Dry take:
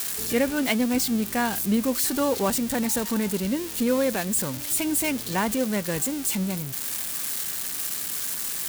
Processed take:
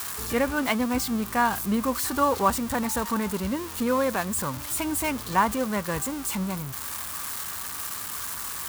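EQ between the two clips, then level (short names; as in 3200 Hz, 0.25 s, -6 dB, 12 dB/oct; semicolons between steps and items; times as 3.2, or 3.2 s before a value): bell 70 Hz +15 dB 1.1 oct; bell 1100 Hz +14 dB 1 oct; -4.5 dB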